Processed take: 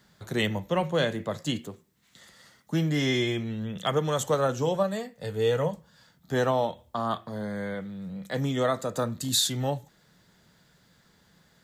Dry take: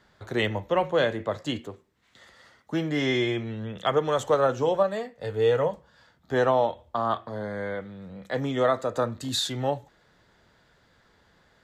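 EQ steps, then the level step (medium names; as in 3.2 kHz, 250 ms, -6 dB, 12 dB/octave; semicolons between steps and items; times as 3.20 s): peaking EQ 170 Hz +11.5 dB 1 oct; treble shelf 3.8 kHz +11 dB; treble shelf 9.2 kHz +8.5 dB; -4.5 dB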